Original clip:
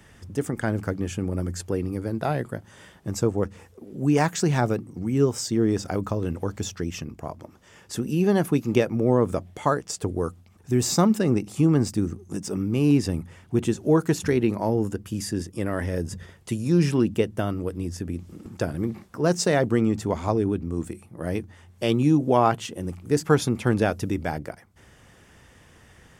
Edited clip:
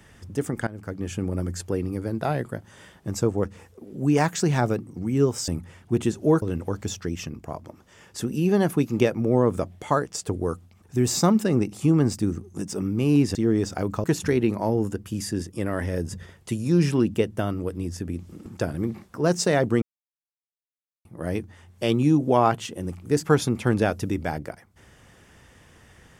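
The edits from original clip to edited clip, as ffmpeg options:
-filter_complex "[0:a]asplit=8[a][b][c][d][e][f][g][h];[a]atrim=end=0.67,asetpts=PTS-STARTPTS,afade=t=out:st=0.666:d=0.004:c=hsin:silence=0.105925[i];[b]atrim=start=0.67:end=5.482,asetpts=PTS-STARTPTS,afade=t=in:d=0.5:silence=0.105925[j];[c]atrim=start=13.098:end=14.042[k];[d]atrim=start=6.168:end=13.102[l];[e]atrim=start=5.478:end=6.172[m];[f]atrim=start=14.038:end=19.82,asetpts=PTS-STARTPTS,afade=t=out:st=5.778:d=0.004:c=hsin[n];[g]atrim=start=19.82:end=21.05,asetpts=PTS-STARTPTS,volume=0[o];[h]atrim=start=21.05,asetpts=PTS-STARTPTS,afade=t=in:d=0.004:c=hsin[p];[i][j]concat=n=2:v=0:a=1[q];[q][k]acrossfade=d=0.004:c1=hsin:c2=hsin[r];[r][l]acrossfade=d=0.004:c1=hsin:c2=hsin[s];[s][m]acrossfade=d=0.004:c1=hsin:c2=hsin[t];[n][o][p]concat=n=3:v=0:a=1[u];[t][u]acrossfade=d=0.004:c1=hsin:c2=hsin"

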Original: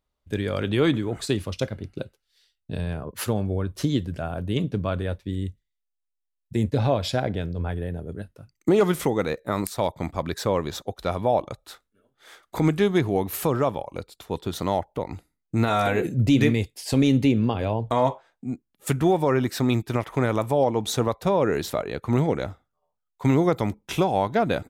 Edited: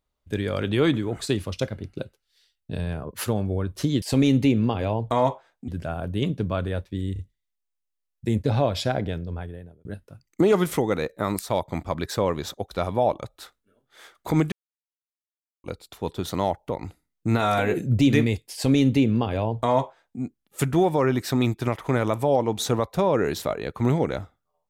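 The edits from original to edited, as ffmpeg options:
-filter_complex "[0:a]asplit=8[a][b][c][d][e][f][g][h];[a]atrim=end=4.022[i];[b]atrim=start=16.818:end=18.482[j];[c]atrim=start=4.018:end=5.502[k];[d]atrim=start=5.468:end=5.502[l];[e]atrim=start=5.468:end=8.13,asetpts=PTS-STARTPTS,afade=t=out:st=1.862:d=0.8[m];[f]atrim=start=8.13:end=12.8,asetpts=PTS-STARTPTS,afade=t=in:d=0.004:c=hsin,afade=t=out:st=4.666:d=0.004:c=hsin[n];[g]atrim=start=12.8:end=13.92,asetpts=PTS-STARTPTS,volume=0[o];[h]atrim=start=13.92,asetpts=PTS-STARTPTS,afade=t=in:d=0.004:c=hsin[p];[i][j]acrossfade=d=0.004:c1=hsin:c2=hsin[q];[q][k]acrossfade=d=0.004:c1=hsin:c2=hsin[r];[r][l]acrossfade=d=0.004:c1=hsin:c2=hsin[s];[m][n][o][p]concat=n=4:v=0:a=1[t];[s][t]acrossfade=d=0.004:c1=hsin:c2=hsin"

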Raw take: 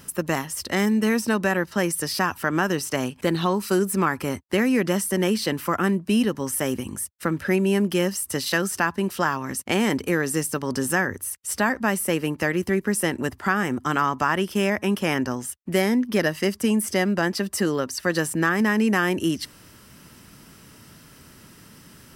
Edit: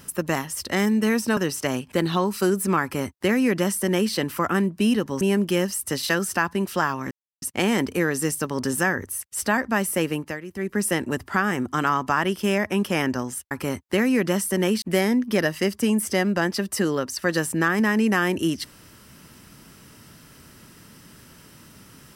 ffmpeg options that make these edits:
-filter_complex "[0:a]asplit=8[a][b][c][d][e][f][g][h];[a]atrim=end=1.372[i];[b]atrim=start=2.658:end=6.502[j];[c]atrim=start=7.638:end=9.54,asetpts=PTS-STARTPTS,afade=t=out:st=1.898:d=0.004:c=hsin,apad=pad_dur=0.31[k];[d]atrim=start=9.54:end=12.52,asetpts=PTS-STARTPTS,afade=t=in:d=0.004:c=hsin,afade=t=out:st=2.68:d=0.3:silence=0.223872[l];[e]atrim=start=12.52:end=12.63,asetpts=PTS-STARTPTS,volume=-13dB[m];[f]atrim=start=12.63:end=15.632,asetpts=PTS-STARTPTS,afade=t=in:d=0.3:silence=0.223872[n];[g]atrim=start=4.108:end=5.422[o];[h]atrim=start=15.628[p];[i][j]acrossfade=d=0.004:c1=hsin:c2=hsin[q];[k][l][m][n]concat=n=4:v=0:a=1[r];[q][r]acrossfade=d=0.004:c1=hsin:c2=hsin[s];[s][o]acrossfade=d=0.004:c1=hsin:c2=hsin[t];[t][p]acrossfade=d=0.004:c1=hsin:c2=hsin"

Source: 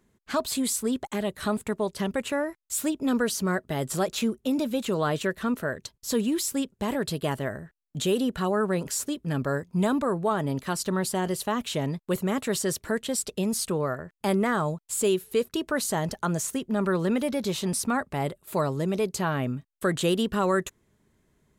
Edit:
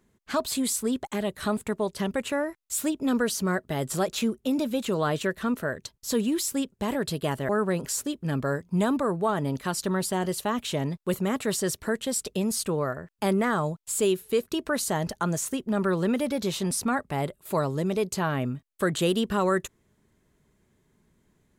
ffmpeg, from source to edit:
-filter_complex "[0:a]asplit=2[a][b];[a]atrim=end=7.492[c];[b]atrim=start=8.508[d];[c][d]acrossfade=d=0.004:c1=hsin:c2=hsin"

